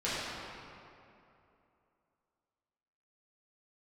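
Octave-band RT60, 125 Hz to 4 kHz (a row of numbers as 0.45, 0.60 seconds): 2.7, 2.8, 2.9, 2.7, 2.2, 1.6 seconds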